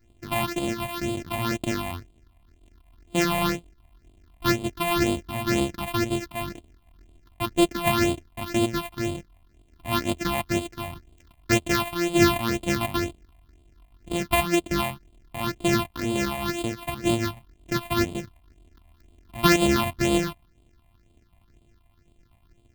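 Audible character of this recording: a buzz of ramps at a fixed pitch in blocks of 128 samples; phasing stages 6, 2 Hz, lowest notch 380–1600 Hz

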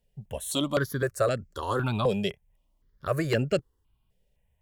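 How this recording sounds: notches that jump at a steady rate 3.9 Hz 310–3700 Hz

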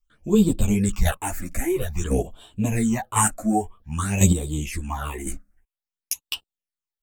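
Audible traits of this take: phasing stages 8, 0.51 Hz, lowest notch 120–2000 Hz; chopped level 0.95 Hz, depth 65%, duty 10%; a shimmering, thickened sound

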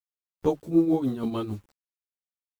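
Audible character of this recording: a quantiser's noise floor 10-bit, dither none; tremolo triangle 6.7 Hz, depth 75%; a shimmering, thickened sound

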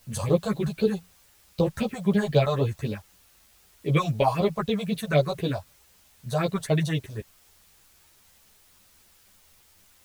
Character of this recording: phasing stages 4, 3.9 Hz, lowest notch 300–1900 Hz; a quantiser's noise floor 10-bit, dither triangular; a shimmering, thickened sound

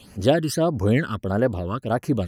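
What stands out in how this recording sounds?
phasing stages 12, 1.6 Hz, lowest notch 670–3500 Hz

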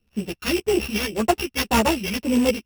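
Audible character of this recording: a buzz of ramps at a fixed pitch in blocks of 16 samples; phasing stages 2, 1.8 Hz, lowest notch 580–3300 Hz; aliases and images of a low sample rate 8.2 kHz, jitter 0%; a shimmering, thickened sound

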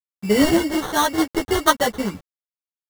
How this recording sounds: aliases and images of a low sample rate 2.5 kHz, jitter 0%; tremolo saw down 0.85 Hz, depth 55%; a quantiser's noise floor 8-bit, dither none; a shimmering, thickened sound

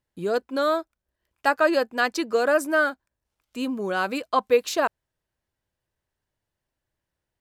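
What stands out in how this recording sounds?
noise floor -85 dBFS; spectral tilt -3.5 dB/octave

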